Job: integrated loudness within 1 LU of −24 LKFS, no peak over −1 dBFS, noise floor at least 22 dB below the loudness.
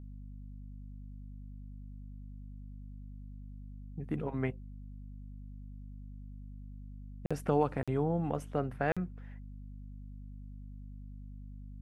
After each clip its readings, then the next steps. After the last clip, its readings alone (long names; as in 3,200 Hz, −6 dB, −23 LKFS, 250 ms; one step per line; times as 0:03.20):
number of dropouts 3; longest dropout 46 ms; mains hum 50 Hz; hum harmonics up to 250 Hz; level of the hum −44 dBFS; integrated loudness −39.5 LKFS; sample peak −15.0 dBFS; target loudness −24.0 LKFS
→ repair the gap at 0:07.26/0:07.83/0:08.92, 46 ms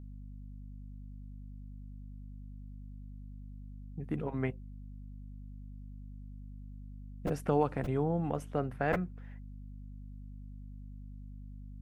number of dropouts 0; mains hum 50 Hz; hum harmonics up to 250 Hz; level of the hum −44 dBFS
→ mains-hum notches 50/100/150/200/250 Hz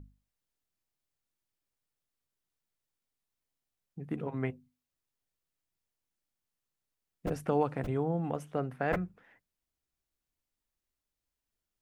mains hum none found; integrated loudness −34.0 LKFS; sample peak −15.5 dBFS; target loudness −24.0 LKFS
→ level +10 dB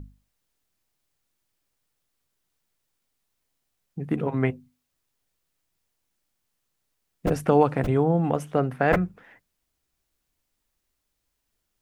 integrated loudness −24.0 LKFS; sample peak −5.5 dBFS; background noise floor −79 dBFS